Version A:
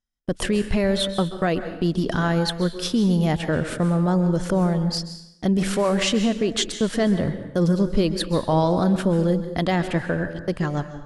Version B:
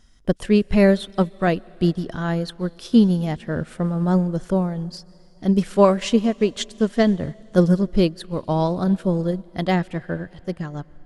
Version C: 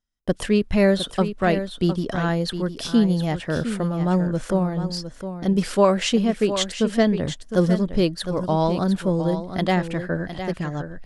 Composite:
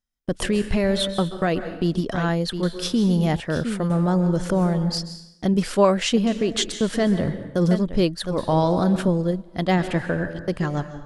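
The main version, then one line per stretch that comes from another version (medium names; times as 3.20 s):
A
2.01–2.63 s: from C
3.40–3.90 s: from C
5.54–6.27 s: from C
7.71–8.38 s: from C
9.08–9.78 s: from B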